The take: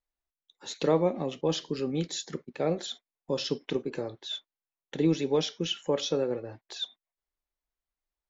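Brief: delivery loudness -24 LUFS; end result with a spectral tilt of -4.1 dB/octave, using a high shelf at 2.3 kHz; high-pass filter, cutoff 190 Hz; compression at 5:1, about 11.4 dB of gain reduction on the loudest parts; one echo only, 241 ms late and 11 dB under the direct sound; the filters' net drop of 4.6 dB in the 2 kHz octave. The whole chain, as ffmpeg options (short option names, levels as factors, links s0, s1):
-af "highpass=190,equalizer=f=2000:t=o:g=-4,highshelf=f=2300:g=-3.5,acompressor=threshold=0.02:ratio=5,aecho=1:1:241:0.282,volume=5.96"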